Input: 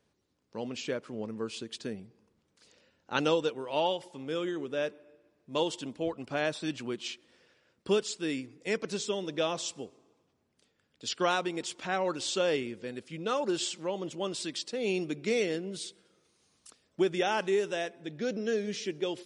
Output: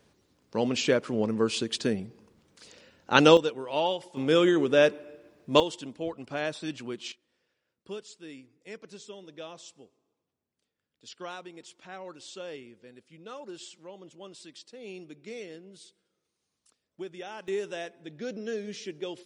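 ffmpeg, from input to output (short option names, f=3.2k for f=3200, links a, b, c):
-af "asetnsamples=n=441:p=0,asendcmd='3.37 volume volume 1.5dB;4.17 volume volume 11.5dB;5.6 volume volume -1dB;7.12 volume volume -12dB;17.48 volume volume -3.5dB',volume=10dB"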